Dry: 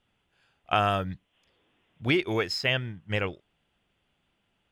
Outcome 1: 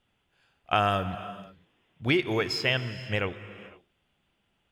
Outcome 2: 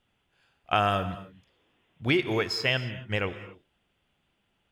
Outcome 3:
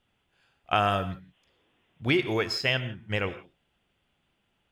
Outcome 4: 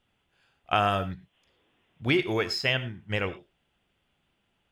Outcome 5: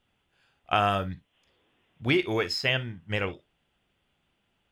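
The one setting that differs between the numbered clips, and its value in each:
reverb whose tail is shaped and stops, gate: 530, 300, 190, 130, 80 milliseconds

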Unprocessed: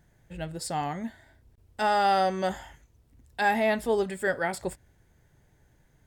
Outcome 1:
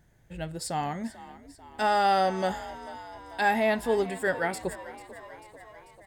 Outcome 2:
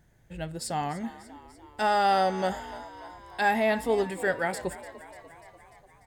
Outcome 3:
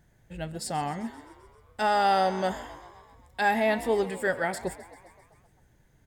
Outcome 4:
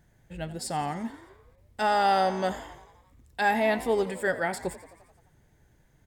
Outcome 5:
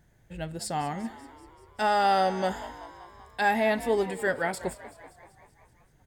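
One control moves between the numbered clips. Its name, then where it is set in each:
echo with shifted repeats, delay time: 442, 295, 131, 87, 192 milliseconds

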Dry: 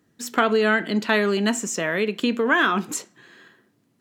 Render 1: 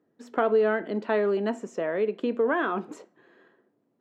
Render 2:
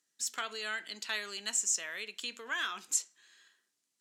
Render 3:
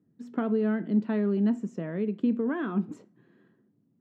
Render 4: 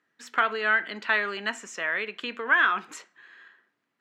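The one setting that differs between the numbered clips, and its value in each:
resonant band-pass, frequency: 520, 7,200, 180, 1,700 Hertz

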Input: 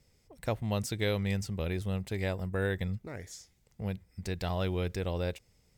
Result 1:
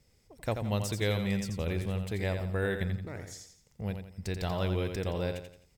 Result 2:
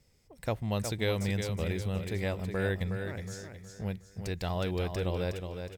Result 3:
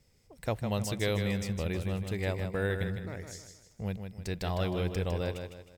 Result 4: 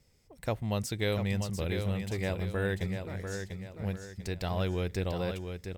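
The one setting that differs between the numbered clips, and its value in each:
repeating echo, delay time: 86, 366, 156, 694 milliseconds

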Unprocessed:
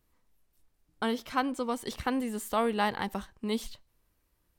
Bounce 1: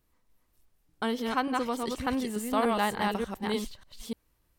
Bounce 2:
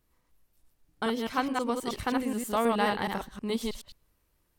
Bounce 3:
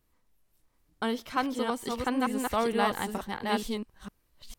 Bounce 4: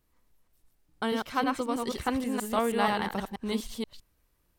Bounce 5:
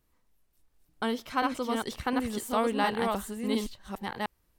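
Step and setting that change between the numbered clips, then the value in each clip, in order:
delay that plays each chunk backwards, delay time: 295, 106, 454, 160, 710 milliseconds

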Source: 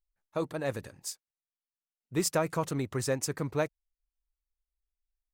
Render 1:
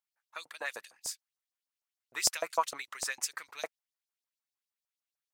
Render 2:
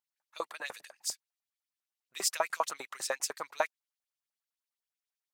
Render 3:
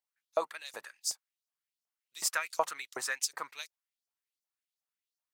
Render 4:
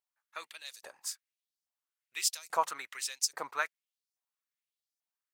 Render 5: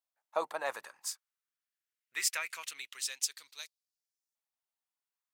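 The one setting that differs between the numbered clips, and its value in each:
auto-filter high-pass, speed: 6.6, 10, 2.7, 1.2, 0.23 Hertz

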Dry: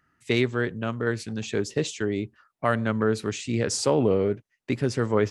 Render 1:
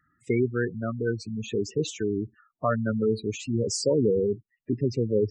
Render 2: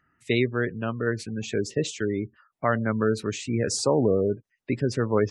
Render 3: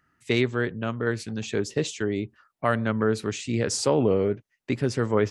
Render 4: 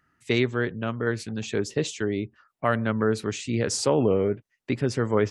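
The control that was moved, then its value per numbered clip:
gate on every frequency bin, under each frame's peak: −10, −25, −55, −45 decibels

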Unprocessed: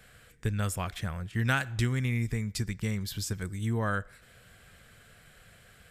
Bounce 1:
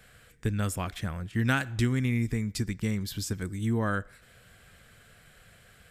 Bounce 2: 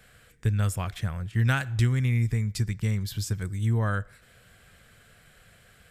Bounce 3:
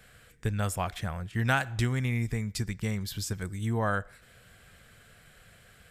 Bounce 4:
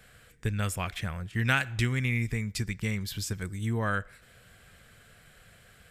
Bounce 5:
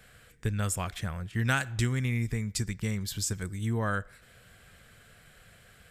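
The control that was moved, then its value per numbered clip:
dynamic equaliser, frequency: 280, 110, 760, 2,400, 7,500 Hertz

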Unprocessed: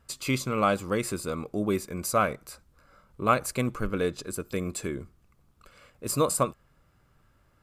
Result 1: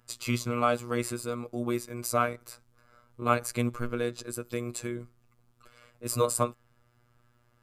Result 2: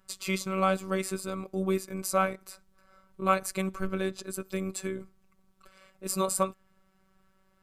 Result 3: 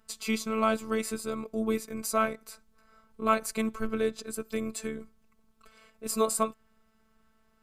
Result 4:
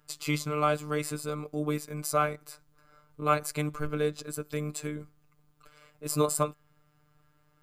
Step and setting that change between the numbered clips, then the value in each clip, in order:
phases set to zero, frequency: 120, 190, 220, 150 Hertz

